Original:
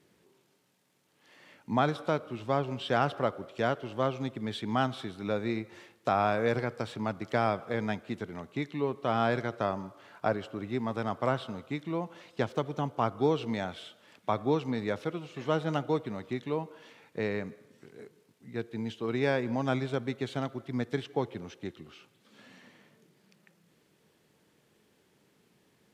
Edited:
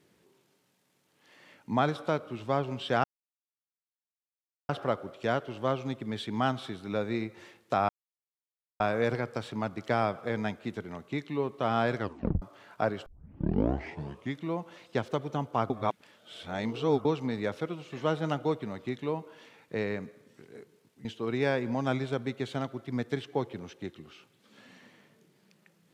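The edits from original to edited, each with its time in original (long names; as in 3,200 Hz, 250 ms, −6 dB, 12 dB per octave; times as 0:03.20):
0:03.04: splice in silence 1.65 s
0:06.24: splice in silence 0.91 s
0:09.43: tape stop 0.43 s
0:10.50: tape start 1.35 s
0:13.14–0:14.49: reverse
0:18.49–0:18.86: remove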